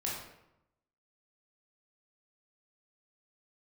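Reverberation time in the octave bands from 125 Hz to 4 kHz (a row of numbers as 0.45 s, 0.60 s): 1.0 s, 0.95 s, 0.85 s, 0.85 s, 0.70 s, 0.55 s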